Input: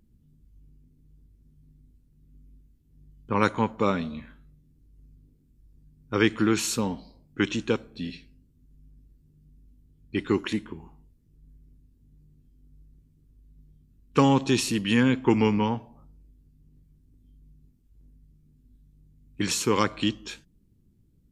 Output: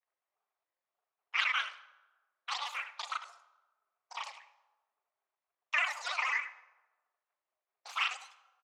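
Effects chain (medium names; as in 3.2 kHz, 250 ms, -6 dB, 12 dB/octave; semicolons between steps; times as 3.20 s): peaking EQ 880 Hz +5.5 dB 0.65 oct; loudspeakers at several distances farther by 29 m -1 dB, 86 m -10 dB; granulator, spray 10 ms, pitch spread up and down by 3 st; high-pass 570 Hz 24 dB/octave; reverberation RT60 2.3 s, pre-delay 6 ms, DRR 13.5 dB; wide varispeed 2.47×; tape spacing loss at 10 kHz 28 dB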